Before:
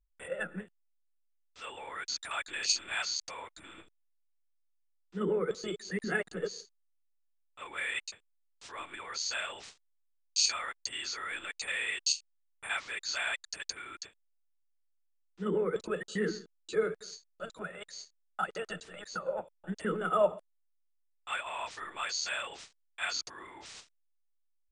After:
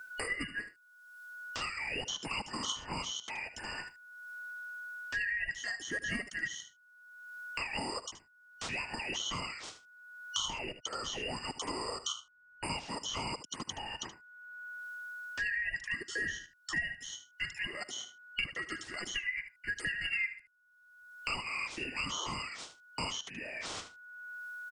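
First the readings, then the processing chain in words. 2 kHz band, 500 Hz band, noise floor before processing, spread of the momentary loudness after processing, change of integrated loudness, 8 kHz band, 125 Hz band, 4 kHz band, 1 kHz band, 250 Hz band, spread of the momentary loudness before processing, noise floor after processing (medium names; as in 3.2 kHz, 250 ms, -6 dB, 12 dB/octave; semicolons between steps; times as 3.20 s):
+2.5 dB, -12.0 dB, -74 dBFS, 13 LU, -3.0 dB, -4.5 dB, -1.5 dB, -1.0 dB, -2.5 dB, -5.0 dB, 17 LU, -64 dBFS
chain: four frequency bands reordered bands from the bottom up 2143; spectral replace 22.04–22.30 s, 320–1700 Hz; delay 75 ms -14.5 dB; three bands compressed up and down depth 100%; trim -2 dB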